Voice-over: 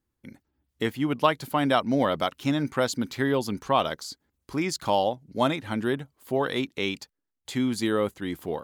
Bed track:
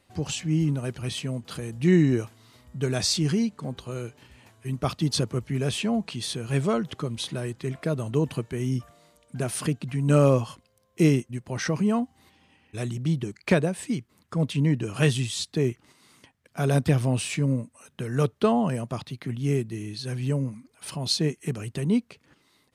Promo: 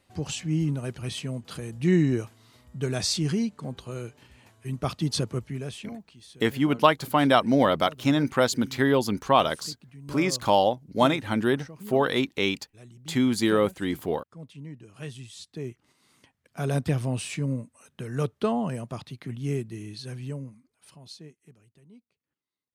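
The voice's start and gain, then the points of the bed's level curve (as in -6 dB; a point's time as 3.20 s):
5.60 s, +3.0 dB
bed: 5.38 s -2 dB
6.08 s -18.5 dB
14.88 s -18.5 dB
16.33 s -4 dB
19.97 s -4 dB
21.89 s -30 dB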